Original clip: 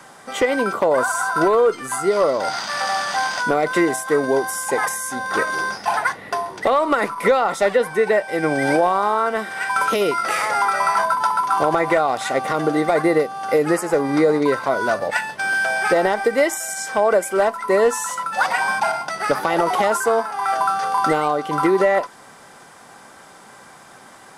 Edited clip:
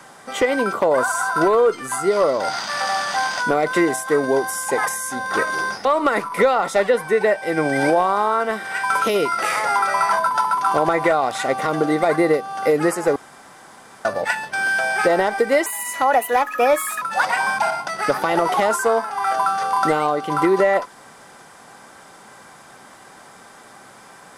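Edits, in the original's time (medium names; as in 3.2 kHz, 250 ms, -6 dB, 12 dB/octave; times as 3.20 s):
5.85–6.71 s: delete
14.02–14.91 s: room tone
16.52–18.23 s: speed 126%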